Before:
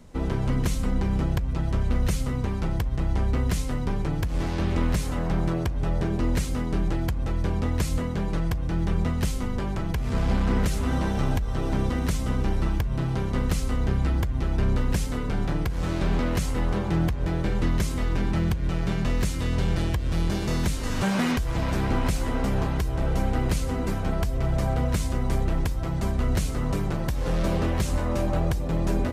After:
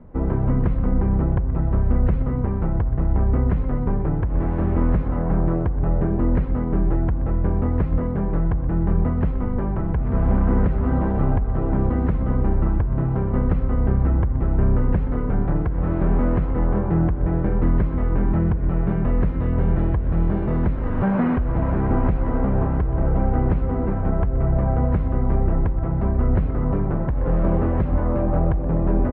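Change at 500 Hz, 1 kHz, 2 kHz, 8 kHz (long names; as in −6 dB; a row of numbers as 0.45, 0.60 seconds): +4.5 dB, +3.0 dB, −3.5 dB, below −40 dB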